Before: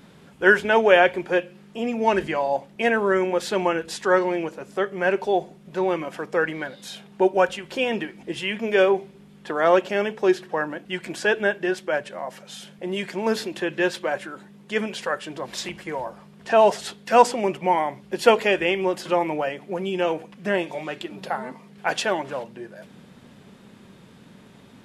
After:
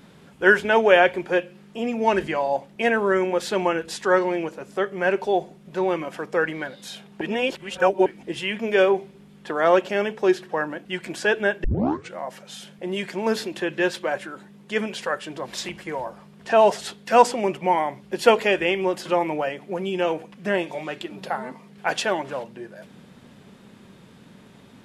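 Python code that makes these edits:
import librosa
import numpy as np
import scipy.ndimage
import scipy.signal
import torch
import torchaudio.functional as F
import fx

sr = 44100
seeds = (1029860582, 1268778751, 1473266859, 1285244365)

y = fx.edit(x, sr, fx.reverse_span(start_s=7.21, length_s=0.85),
    fx.tape_start(start_s=11.64, length_s=0.51), tone=tone)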